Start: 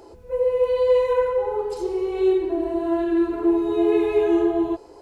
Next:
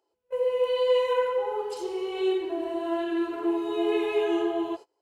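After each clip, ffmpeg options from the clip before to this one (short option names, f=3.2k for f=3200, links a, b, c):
-af "agate=range=-27dB:threshold=-32dB:ratio=16:detection=peak,highpass=f=730:p=1,equalizer=f=3k:t=o:w=0.21:g=8.5"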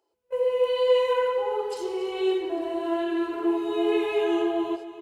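-af "aecho=1:1:283|566|849|1132|1415:0.178|0.0942|0.05|0.0265|0.014,volume=1.5dB"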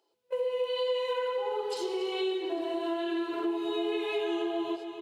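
-af "highpass=f=99:w=0.5412,highpass=f=99:w=1.3066,equalizer=f=3.8k:w=1.5:g=8,acompressor=threshold=-29dB:ratio=4"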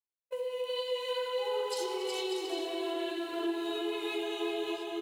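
-af "crystalizer=i=2.5:c=0,aecho=1:1:370|592|725.2|805.1|853.1:0.631|0.398|0.251|0.158|0.1,agate=range=-33dB:threshold=-48dB:ratio=3:detection=peak,volume=-5.5dB"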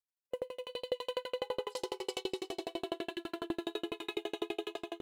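-af "aeval=exprs='val(0)*pow(10,-40*if(lt(mod(12*n/s,1),2*abs(12)/1000),1-mod(12*n/s,1)/(2*abs(12)/1000),(mod(12*n/s,1)-2*abs(12)/1000)/(1-2*abs(12)/1000))/20)':c=same,volume=4.5dB"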